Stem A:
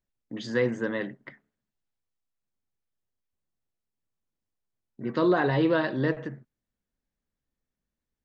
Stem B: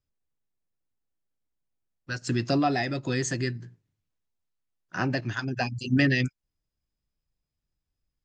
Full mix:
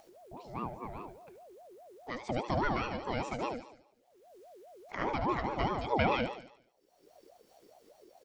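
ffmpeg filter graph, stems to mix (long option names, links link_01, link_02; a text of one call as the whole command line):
ffmpeg -i stem1.wav -i stem2.wav -filter_complex "[0:a]equalizer=frequency=320:width=1.1:gain=12,volume=-18dB,asplit=2[link_01][link_02];[link_02]volume=-14dB[link_03];[1:a]acompressor=mode=upward:threshold=-30dB:ratio=2.5,volume=-4.5dB,asplit=2[link_04][link_05];[link_05]volume=-9dB[link_06];[link_03][link_06]amix=inputs=2:normalize=0,aecho=0:1:73|146|219|292|365|438|511:1|0.48|0.23|0.111|0.0531|0.0255|0.0122[link_07];[link_01][link_04][link_07]amix=inputs=3:normalize=0,acrossover=split=3900[link_08][link_09];[link_09]acompressor=threshold=-59dB:ratio=4:attack=1:release=60[link_10];[link_08][link_10]amix=inputs=2:normalize=0,aeval=exprs='val(0)*sin(2*PI*540*n/s+540*0.35/4.9*sin(2*PI*4.9*n/s))':channel_layout=same" out.wav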